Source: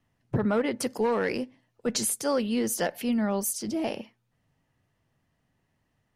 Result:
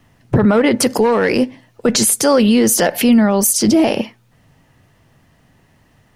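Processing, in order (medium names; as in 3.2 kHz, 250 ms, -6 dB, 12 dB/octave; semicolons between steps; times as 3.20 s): loudness maximiser +24 dB; trim -4 dB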